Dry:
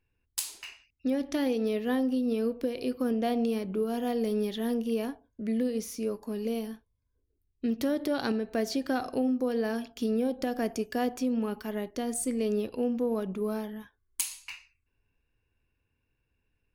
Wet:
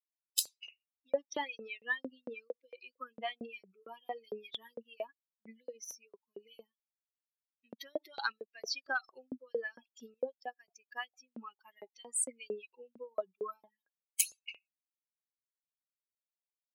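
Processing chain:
spectral dynamics exaggerated over time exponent 3
auto-filter high-pass saw up 4.4 Hz 520–6,700 Hz
0:10.14–0:11.35: expander for the loud parts 1.5 to 1, over −58 dBFS
level +4 dB

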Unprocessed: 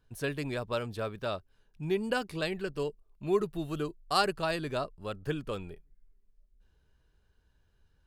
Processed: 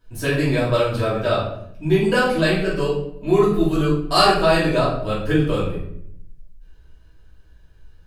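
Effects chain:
rectangular room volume 140 cubic metres, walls mixed, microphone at 2.8 metres
level +3.5 dB

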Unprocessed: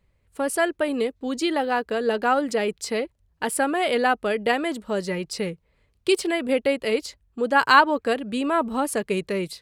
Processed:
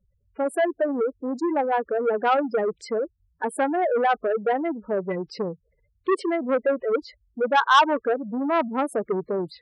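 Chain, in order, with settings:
bass and treble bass −5 dB, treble −13 dB
gate on every frequency bin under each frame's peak −10 dB strong
dynamic equaliser 1,900 Hz, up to −7 dB, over −40 dBFS, Q 2.9
saturating transformer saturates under 1,900 Hz
level +3 dB

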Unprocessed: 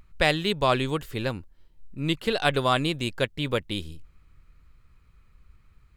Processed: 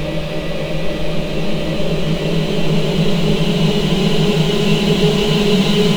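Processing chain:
treble cut that deepens with the level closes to 2,700 Hz, closed at −19.5 dBFS
low-shelf EQ 210 Hz +10 dB
four-comb reverb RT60 3.7 s, combs from 32 ms, DRR −10 dB
dead-zone distortion −32.5 dBFS
flat-topped bell 1,200 Hz −15.5 dB
mains-hum notches 50/100/150/200/250/300/350/400 Hz
noise reduction from a noise print of the clip's start 15 dB
leveller curve on the samples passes 5
extreme stretch with random phases 46×, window 0.25 s, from 0:00.39
level −7 dB

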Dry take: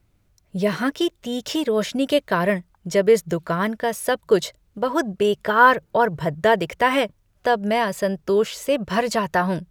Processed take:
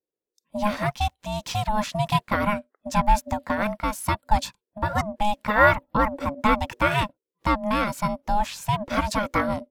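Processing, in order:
noise reduction from a noise print of the clip's start 27 dB
ring modulation 420 Hz

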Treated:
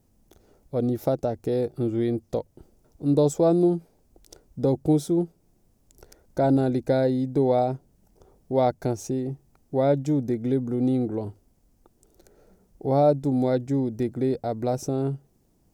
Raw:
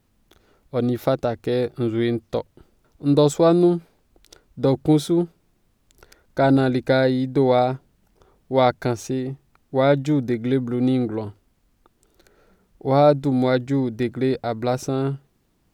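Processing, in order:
flat-topped bell 2,100 Hz −9.5 dB 2.3 octaves
in parallel at +0.5 dB: downward compressor, threshold −32 dBFS, peak gain reduction 19.5 dB
on the sum: level −5 dB

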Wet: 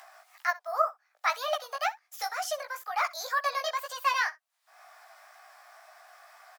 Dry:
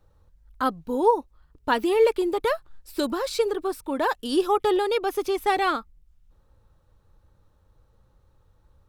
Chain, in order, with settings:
Butterworth high-pass 500 Hz 48 dB per octave
upward compression, threshold −32 dBFS
chorus effect 1.5 Hz, delay 19 ms, depth 6.1 ms
single-tap delay 86 ms −20.5 dB
wrong playback speed 33 rpm record played at 45 rpm

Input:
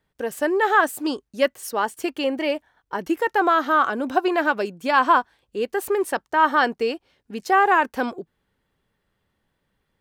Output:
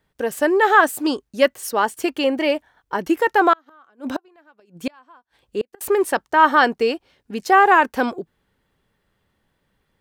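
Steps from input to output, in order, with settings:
0:03.53–0:05.81: gate with flip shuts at −16 dBFS, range −36 dB
level +4 dB

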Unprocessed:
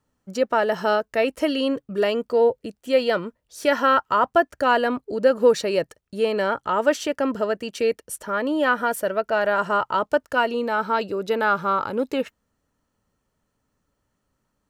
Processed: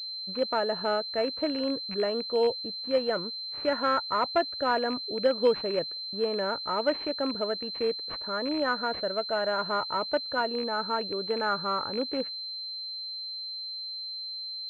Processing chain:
loose part that buzzes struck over −32 dBFS, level −18 dBFS
switching amplifier with a slow clock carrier 4,100 Hz
level −7 dB

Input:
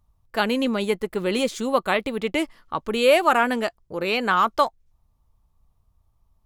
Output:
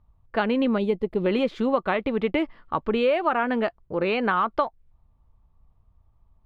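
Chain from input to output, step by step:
0:00.78–0:01.26: parametric band 1,500 Hz −14.5 dB 1.3 octaves
downward compressor 6 to 1, threshold −21 dBFS, peak gain reduction 9 dB
high-frequency loss of the air 380 metres
level +4 dB

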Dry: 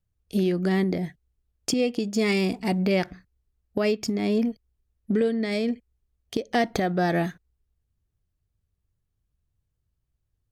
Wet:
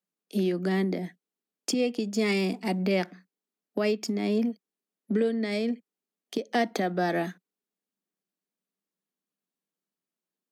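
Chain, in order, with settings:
Butterworth high-pass 180 Hz 72 dB per octave
level −2.5 dB

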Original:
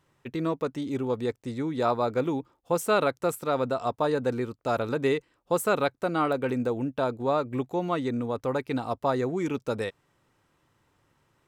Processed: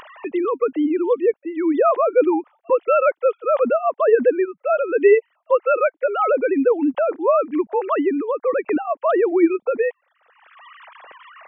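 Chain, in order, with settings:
three sine waves on the formant tracks
upward compression, threshold −31 dBFS
level +9 dB

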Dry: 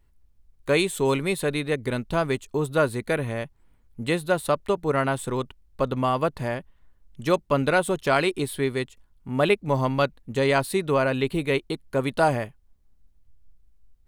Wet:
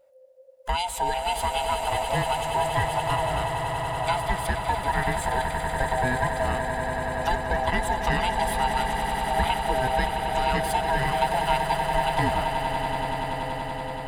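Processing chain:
neighbouring bands swapped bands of 500 Hz
downward compressor, threshold −22 dBFS, peak gain reduction 7 dB
echo that builds up and dies away 95 ms, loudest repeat 8, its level −11 dB

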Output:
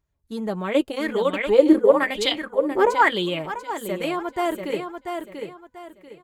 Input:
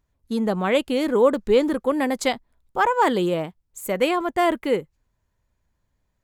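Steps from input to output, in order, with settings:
notch comb filter 250 Hz
repeating echo 689 ms, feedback 30%, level −6 dB
0:00.74–0:03.39: auto-filter bell 1 Hz 340–3,600 Hz +16 dB
level −3.5 dB

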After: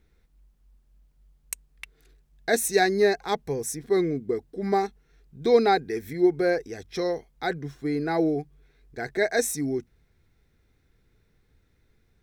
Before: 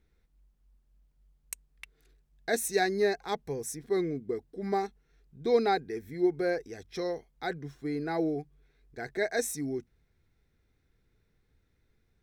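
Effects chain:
0:05.42–0:06.13: one half of a high-frequency compander encoder only
level +6 dB

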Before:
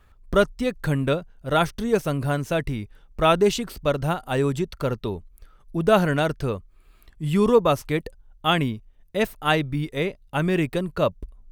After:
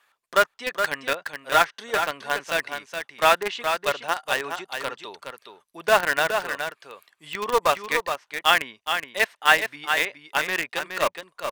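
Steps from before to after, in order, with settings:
notch filter 1,300 Hz, Q 14
treble cut that deepens with the level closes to 2,600 Hz, closed at −17 dBFS
high-pass filter 960 Hz 12 dB per octave
dynamic equaliser 1,800 Hz, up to +5 dB, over −44 dBFS, Q 3.7
in parallel at −4.5 dB: bit reduction 4 bits
on the sum: single-tap delay 419 ms −7 dB
level +2.5 dB

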